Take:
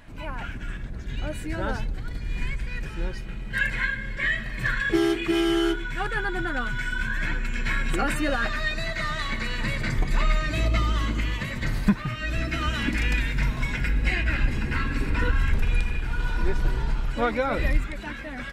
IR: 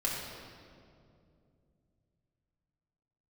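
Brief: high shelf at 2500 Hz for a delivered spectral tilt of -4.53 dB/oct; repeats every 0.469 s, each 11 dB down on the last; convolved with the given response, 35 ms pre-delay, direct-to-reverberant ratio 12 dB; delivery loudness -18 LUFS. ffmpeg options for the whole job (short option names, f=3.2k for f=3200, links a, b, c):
-filter_complex "[0:a]highshelf=f=2.5k:g=7,aecho=1:1:469|938|1407:0.282|0.0789|0.0221,asplit=2[a][b];[1:a]atrim=start_sample=2205,adelay=35[c];[b][c]afir=irnorm=-1:irlink=0,volume=-18.5dB[d];[a][d]amix=inputs=2:normalize=0,volume=7dB"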